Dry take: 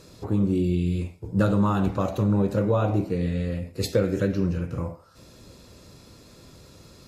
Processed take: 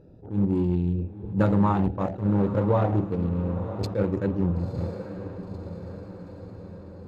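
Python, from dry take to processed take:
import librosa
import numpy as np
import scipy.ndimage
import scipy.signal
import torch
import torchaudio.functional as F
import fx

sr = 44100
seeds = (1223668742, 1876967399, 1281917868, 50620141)

y = fx.wiener(x, sr, points=41)
y = fx.lowpass(y, sr, hz=2800.0, slope=6)
y = fx.peak_eq(y, sr, hz=860.0, db=9.0, octaves=0.37)
y = fx.echo_diffused(y, sr, ms=980, feedback_pct=57, wet_db=-12.0)
y = fx.attack_slew(y, sr, db_per_s=180.0)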